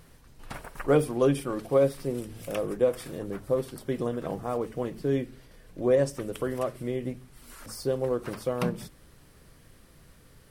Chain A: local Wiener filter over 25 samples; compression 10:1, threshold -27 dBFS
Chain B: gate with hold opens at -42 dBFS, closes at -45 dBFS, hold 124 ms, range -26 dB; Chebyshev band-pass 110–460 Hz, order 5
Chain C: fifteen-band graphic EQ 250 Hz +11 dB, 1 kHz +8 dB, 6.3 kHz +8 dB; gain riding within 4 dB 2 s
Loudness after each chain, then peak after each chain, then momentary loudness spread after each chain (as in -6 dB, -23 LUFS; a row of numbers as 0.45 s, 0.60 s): -34.5 LUFS, -32.5 LUFS, -25.0 LUFS; -19.5 dBFS, -11.5 dBFS, -6.0 dBFS; 13 LU, 13 LU, 13 LU